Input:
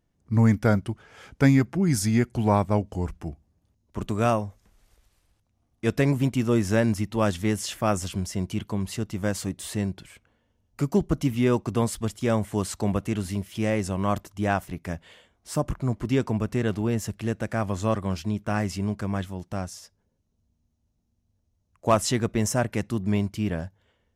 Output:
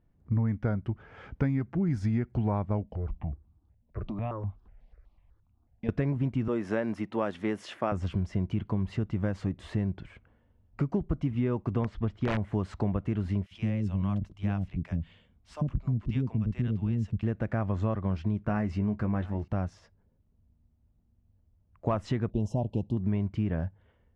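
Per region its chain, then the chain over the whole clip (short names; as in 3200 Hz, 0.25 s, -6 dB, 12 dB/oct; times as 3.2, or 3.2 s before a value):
2.83–5.89 compressor 4:1, threshold -30 dBFS + polynomial smoothing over 15 samples + step phaser 8.1 Hz 350–1800 Hz
6.48–7.92 HPF 300 Hz + bell 10000 Hz +8 dB 0.38 oct
11.84–12.38 LPF 4600 Hz + wrapped overs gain 15.5 dB
13.46–17.23 band shelf 800 Hz -9.5 dB 2.9 oct + bands offset in time highs, lows 50 ms, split 550 Hz
18.45–19.48 notch 3300 Hz + doubler 14 ms -8.5 dB + echo 0.715 s -24 dB
22.3–22.97 elliptic band-stop 900–3000 Hz + high shelf 11000 Hz +3.5 dB
whole clip: LPF 2100 Hz 12 dB/oct; low shelf 150 Hz +8 dB; compressor 6:1, threshold -25 dBFS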